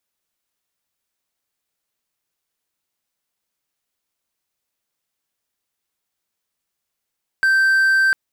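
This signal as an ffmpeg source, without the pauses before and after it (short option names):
-f lavfi -i "aevalsrc='0.299*(1-4*abs(mod(1560*t+0.25,1)-0.5))':d=0.7:s=44100"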